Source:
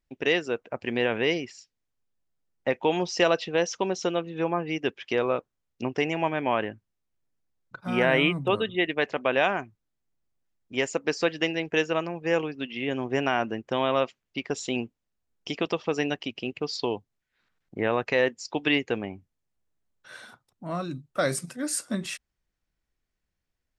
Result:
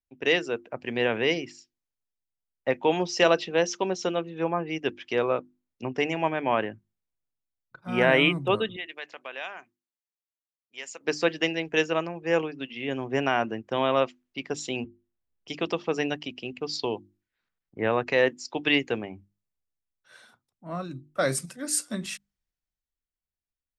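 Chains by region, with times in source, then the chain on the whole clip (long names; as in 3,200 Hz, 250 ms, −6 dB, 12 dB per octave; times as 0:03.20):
0:08.76–0:11.01: high-pass filter 1,300 Hz 6 dB per octave + downward compressor 1.5 to 1, threshold −38 dBFS
0:14.84–0:15.48: high-frequency loss of the air 270 metres + multiband upward and downward compressor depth 40%
whole clip: mains-hum notches 50/100/150/200/250/300/350 Hz; multiband upward and downward expander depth 40%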